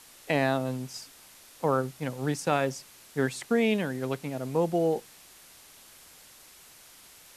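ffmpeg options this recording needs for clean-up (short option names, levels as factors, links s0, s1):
-af "afwtdn=0.0028"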